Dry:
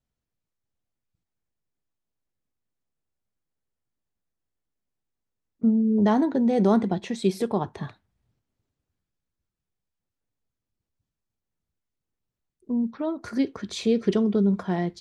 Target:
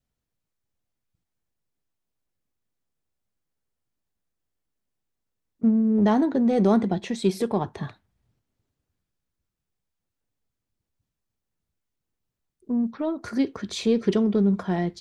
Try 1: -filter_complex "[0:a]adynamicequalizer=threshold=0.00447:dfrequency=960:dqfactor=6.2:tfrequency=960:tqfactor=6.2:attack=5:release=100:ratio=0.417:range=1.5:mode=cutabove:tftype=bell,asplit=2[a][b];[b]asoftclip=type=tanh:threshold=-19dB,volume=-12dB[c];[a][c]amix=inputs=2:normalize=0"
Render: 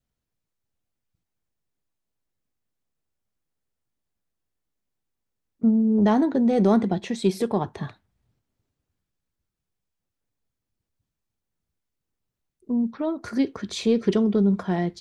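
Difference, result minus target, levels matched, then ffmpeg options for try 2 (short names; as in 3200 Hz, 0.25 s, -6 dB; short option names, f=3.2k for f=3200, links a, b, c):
soft clip: distortion -7 dB
-filter_complex "[0:a]adynamicequalizer=threshold=0.00447:dfrequency=960:dqfactor=6.2:tfrequency=960:tqfactor=6.2:attack=5:release=100:ratio=0.417:range=1.5:mode=cutabove:tftype=bell,asplit=2[a][b];[b]asoftclip=type=tanh:threshold=-28.5dB,volume=-12dB[c];[a][c]amix=inputs=2:normalize=0"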